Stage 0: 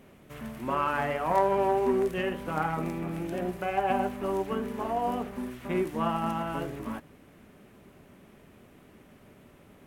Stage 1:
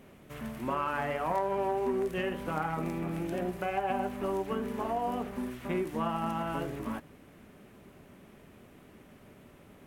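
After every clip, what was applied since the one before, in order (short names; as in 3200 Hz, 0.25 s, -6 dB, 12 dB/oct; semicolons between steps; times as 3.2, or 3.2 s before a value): compressor 2.5:1, threshold -29 dBFS, peak gain reduction 7.5 dB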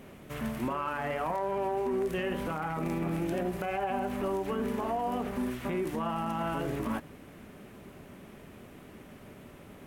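limiter -28.5 dBFS, peak gain reduction 11 dB; gain +5 dB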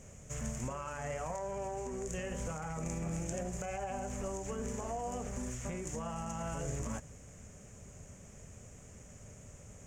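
EQ curve 100 Hz 0 dB, 340 Hz -20 dB, 490 Hz -8 dB, 960 Hz -15 dB, 2300 Hz -12 dB, 4100 Hz -16 dB, 6900 Hz +14 dB, 11000 Hz -17 dB; gain +4.5 dB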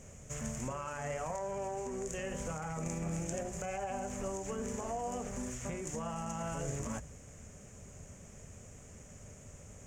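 notches 60/120/180 Hz; gain +1 dB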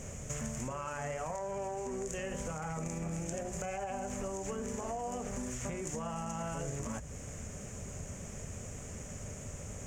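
compressor 4:1, threshold -45 dBFS, peak gain reduction 10 dB; gain +8.5 dB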